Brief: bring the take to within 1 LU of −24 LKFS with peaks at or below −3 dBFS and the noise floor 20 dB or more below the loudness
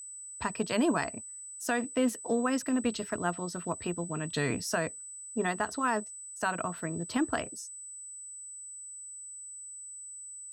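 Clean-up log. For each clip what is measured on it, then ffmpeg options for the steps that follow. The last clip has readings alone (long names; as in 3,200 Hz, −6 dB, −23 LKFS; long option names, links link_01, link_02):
interfering tone 8,000 Hz; level of the tone −42 dBFS; integrated loudness −33.5 LKFS; sample peak −17.0 dBFS; target loudness −24.0 LKFS
→ -af "bandreject=frequency=8000:width=30"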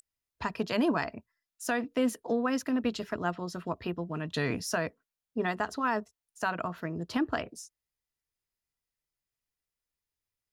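interfering tone none found; integrated loudness −32.5 LKFS; sample peak −17.5 dBFS; target loudness −24.0 LKFS
→ -af "volume=8.5dB"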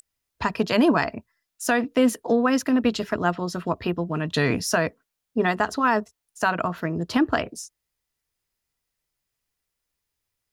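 integrated loudness −24.0 LKFS; sample peak −9.0 dBFS; background noise floor −82 dBFS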